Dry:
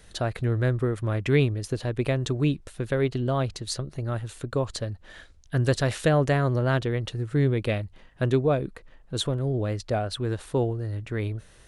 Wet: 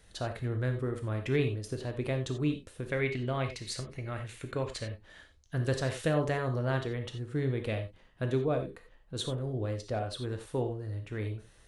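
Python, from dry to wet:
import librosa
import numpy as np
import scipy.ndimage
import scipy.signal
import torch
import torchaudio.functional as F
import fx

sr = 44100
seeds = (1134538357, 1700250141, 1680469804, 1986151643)

y = fx.peak_eq(x, sr, hz=2200.0, db=13.5, octaves=0.6, at=(2.92, 4.93))
y = fx.rev_gated(y, sr, seeds[0], gate_ms=110, shape='flat', drr_db=5.0)
y = F.gain(torch.from_numpy(y), -8.0).numpy()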